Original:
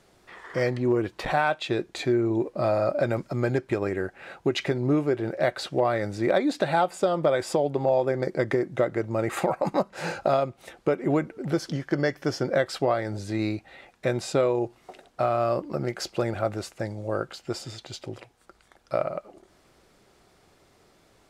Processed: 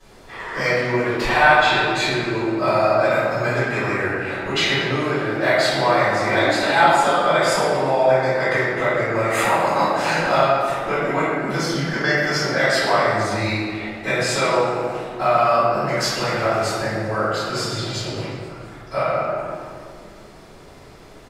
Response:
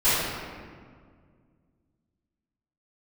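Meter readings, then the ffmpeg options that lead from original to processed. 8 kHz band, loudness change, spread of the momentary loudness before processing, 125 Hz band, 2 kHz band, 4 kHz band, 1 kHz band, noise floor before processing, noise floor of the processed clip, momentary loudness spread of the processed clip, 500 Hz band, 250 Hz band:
+11.0 dB, +7.5 dB, 9 LU, +4.0 dB, +14.5 dB, +13.0 dB, +11.0 dB, -61 dBFS, -43 dBFS, 9 LU, +5.5 dB, +2.5 dB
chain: -filter_complex "[0:a]acrossover=split=820[a][b];[a]acompressor=threshold=-38dB:ratio=10[c];[c][b]amix=inputs=2:normalize=0,asplit=7[d][e][f][g][h][i][j];[e]adelay=122,afreqshift=90,volume=-17dB[k];[f]adelay=244,afreqshift=180,volume=-21.2dB[l];[g]adelay=366,afreqshift=270,volume=-25.3dB[m];[h]adelay=488,afreqshift=360,volume=-29.5dB[n];[i]adelay=610,afreqshift=450,volume=-33.6dB[o];[j]adelay=732,afreqshift=540,volume=-37.8dB[p];[d][k][l][m][n][o][p]amix=inputs=7:normalize=0[q];[1:a]atrim=start_sample=2205[r];[q][r]afir=irnorm=-1:irlink=0,volume=-3dB"

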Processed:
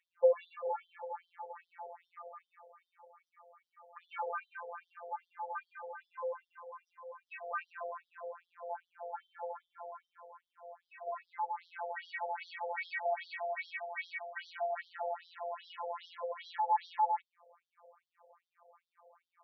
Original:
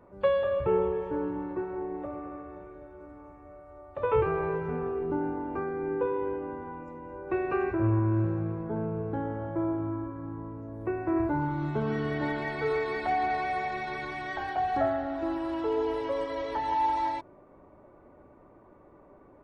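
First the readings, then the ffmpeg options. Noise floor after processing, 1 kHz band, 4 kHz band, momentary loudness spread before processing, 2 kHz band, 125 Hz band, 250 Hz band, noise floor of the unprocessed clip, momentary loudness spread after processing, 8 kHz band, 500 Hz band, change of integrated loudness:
under -85 dBFS, -6.0 dB, -6.0 dB, 15 LU, -6.5 dB, under -40 dB, under -40 dB, -56 dBFS, 18 LU, n/a, -9.5 dB, -9.0 dB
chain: -af "afftfilt=real='hypot(re,im)*cos(PI*b)':imag='0':win_size=1024:overlap=0.75,aeval=exprs='0.141*(cos(1*acos(clip(val(0)/0.141,-1,1)))-cos(1*PI/2))+0.001*(cos(6*acos(clip(val(0)/0.141,-1,1)))-cos(6*PI/2))':c=same,afftfilt=real='re*between(b*sr/1024,570*pow(4400/570,0.5+0.5*sin(2*PI*2.5*pts/sr))/1.41,570*pow(4400/570,0.5+0.5*sin(2*PI*2.5*pts/sr))*1.41)':imag='im*between(b*sr/1024,570*pow(4400/570,0.5+0.5*sin(2*PI*2.5*pts/sr))/1.41,570*pow(4400/570,0.5+0.5*sin(2*PI*2.5*pts/sr))*1.41)':win_size=1024:overlap=0.75,volume=3.5dB"

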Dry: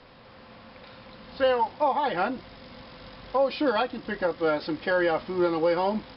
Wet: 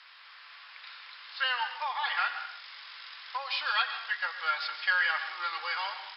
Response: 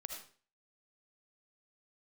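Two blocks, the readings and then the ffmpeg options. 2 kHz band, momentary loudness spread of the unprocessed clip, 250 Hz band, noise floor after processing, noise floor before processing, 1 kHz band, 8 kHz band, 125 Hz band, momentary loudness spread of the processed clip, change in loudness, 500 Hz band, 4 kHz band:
+4.5 dB, 21 LU, under -40 dB, -52 dBFS, -50 dBFS, -5.0 dB, n/a, under -40 dB, 18 LU, -4.5 dB, -25.5 dB, +5.0 dB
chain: -filter_complex "[0:a]highpass=f=1.3k:w=0.5412,highpass=f=1.3k:w=1.3066,asplit=2[a][b];[1:a]atrim=start_sample=2205,asetrate=26460,aresample=44100[c];[b][c]afir=irnorm=-1:irlink=0,volume=-1.5dB[d];[a][d]amix=inputs=2:normalize=0"

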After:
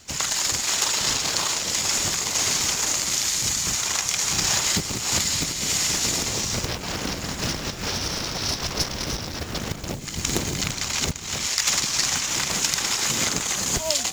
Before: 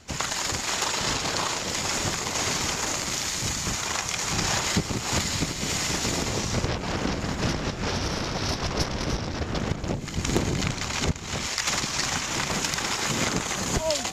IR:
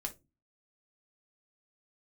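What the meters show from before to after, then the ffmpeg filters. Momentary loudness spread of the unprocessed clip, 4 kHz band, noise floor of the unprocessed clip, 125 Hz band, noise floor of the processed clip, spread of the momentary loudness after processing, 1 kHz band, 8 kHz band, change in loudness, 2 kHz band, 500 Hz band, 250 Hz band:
4 LU, +4.5 dB, -33 dBFS, -3.0 dB, -33 dBFS, 7 LU, -2.0 dB, +6.5 dB, +4.0 dB, +0.5 dB, -2.5 dB, -3.0 dB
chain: -af "acrusher=bits=6:mode=log:mix=0:aa=0.000001,highshelf=f=3k:g=11.5,volume=-3dB"

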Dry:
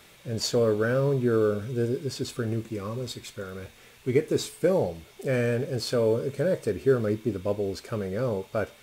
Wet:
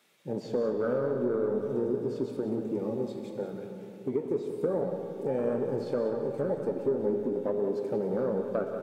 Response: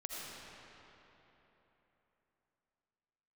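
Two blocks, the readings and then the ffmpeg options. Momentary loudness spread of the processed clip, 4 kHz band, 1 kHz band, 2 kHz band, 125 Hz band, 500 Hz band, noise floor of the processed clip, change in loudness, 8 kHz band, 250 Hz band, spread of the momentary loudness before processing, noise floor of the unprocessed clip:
8 LU, under -15 dB, -3.0 dB, -12.0 dB, -10.5 dB, -3.0 dB, -45 dBFS, -3.5 dB, under -20 dB, -2.5 dB, 12 LU, -54 dBFS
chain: -filter_complex "[0:a]acrossover=split=3300[a][b];[b]acompressor=threshold=-44dB:ratio=4:attack=1:release=60[c];[a][c]amix=inputs=2:normalize=0,afwtdn=0.0355,highpass=f=170:w=0.5412,highpass=f=170:w=1.3066,asplit=2[d][e];[e]alimiter=limit=-21.5dB:level=0:latency=1:release=280,volume=-1dB[f];[d][f]amix=inputs=2:normalize=0,acompressor=threshold=-24dB:ratio=4,aeval=exprs='0.188*(cos(1*acos(clip(val(0)/0.188,-1,1)))-cos(1*PI/2))+0.0075*(cos(5*acos(clip(val(0)/0.188,-1,1)))-cos(5*PI/2))+0.00211*(cos(7*acos(clip(val(0)/0.188,-1,1)))-cos(7*PI/2))':c=same,flanger=delay=3.2:depth=4.6:regen=-75:speed=1.8:shape=triangular,aecho=1:1:184:0.299,asplit=2[g][h];[1:a]atrim=start_sample=2205[i];[h][i]afir=irnorm=-1:irlink=0,volume=-1.5dB[j];[g][j]amix=inputs=2:normalize=0,volume=-2.5dB"

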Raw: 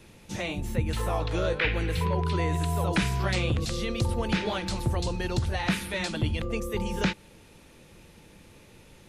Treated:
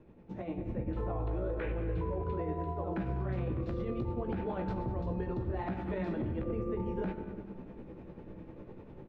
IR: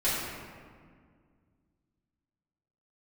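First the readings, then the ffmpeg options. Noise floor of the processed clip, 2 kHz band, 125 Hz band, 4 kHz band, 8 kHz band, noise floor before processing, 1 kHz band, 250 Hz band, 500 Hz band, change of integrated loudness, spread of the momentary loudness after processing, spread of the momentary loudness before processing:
-51 dBFS, -17.5 dB, -8.0 dB, under -25 dB, under -35 dB, -54 dBFS, -8.0 dB, -5.0 dB, -5.0 dB, -7.5 dB, 13 LU, 5 LU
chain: -filter_complex "[0:a]lowpass=1.1k,equalizer=f=310:w=0.83:g=5.5,acompressor=threshold=-31dB:ratio=12,asplit=2[a][b];[b]adelay=198.3,volume=-16dB,highshelf=f=4k:g=-4.46[c];[a][c]amix=inputs=2:normalize=0,asplit=2[d][e];[1:a]atrim=start_sample=2205[f];[e][f]afir=irnorm=-1:irlink=0,volume=-16dB[g];[d][g]amix=inputs=2:normalize=0,tremolo=f=10:d=0.53,asplit=2[h][i];[i]adelay=16,volume=-6.5dB[j];[h][j]amix=inputs=2:normalize=0,dynaudnorm=f=450:g=3:m=8.5dB,alimiter=limit=-20dB:level=0:latency=1:release=11,volume=-7dB"

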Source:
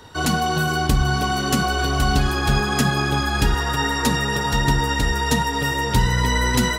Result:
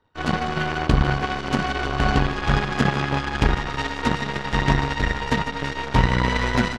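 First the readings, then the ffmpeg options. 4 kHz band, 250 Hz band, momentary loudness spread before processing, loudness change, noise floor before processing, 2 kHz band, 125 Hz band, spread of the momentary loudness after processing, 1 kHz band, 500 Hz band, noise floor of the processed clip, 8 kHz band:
-5.5 dB, -1.5 dB, 2 LU, -2.5 dB, -24 dBFS, -2.5 dB, -2.0 dB, 4 LU, -2.5 dB, -1.0 dB, -32 dBFS, -13.5 dB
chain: -filter_complex "[0:a]lowpass=2.7k,aeval=exprs='0.473*(cos(1*acos(clip(val(0)/0.473,-1,1)))-cos(1*PI/2))+0.00841*(cos(3*acos(clip(val(0)/0.473,-1,1)))-cos(3*PI/2))+0.119*(cos(4*acos(clip(val(0)/0.473,-1,1)))-cos(4*PI/2))+0.0841*(cos(6*acos(clip(val(0)/0.473,-1,1)))-cos(6*PI/2))+0.0596*(cos(7*acos(clip(val(0)/0.473,-1,1)))-cos(7*PI/2))':c=same,asplit=2[a][b];[b]aecho=0:1:151:0.224[c];[a][c]amix=inputs=2:normalize=0"

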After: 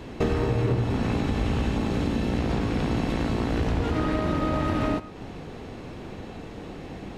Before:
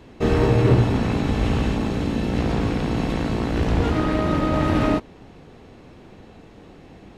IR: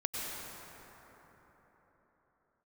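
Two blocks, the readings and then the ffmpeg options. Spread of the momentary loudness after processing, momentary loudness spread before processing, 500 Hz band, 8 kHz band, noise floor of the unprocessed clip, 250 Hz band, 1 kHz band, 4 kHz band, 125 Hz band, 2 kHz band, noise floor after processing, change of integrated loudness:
15 LU, 6 LU, -5.0 dB, -3.5 dB, -46 dBFS, -4.5 dB, -4.0 dB, -3.5 dB, -5.0 dB, -4.0 dB, -40 dBFS, -4.5 dB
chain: -filter_complex "[0:a]acompressor=threshold=-29dB:ratio=6,asplit=2[a][b];[1:a]atrim=start_sample=2205,afade=t=out:st=0.18:d=0.01,atrim=end_sample=8379[c];[b][c]afir=irnorm=-1:irlink=0,volume=-6.5dB[d];[a][d]amix=inputs=2:normalize=0,volume=3.5dB"

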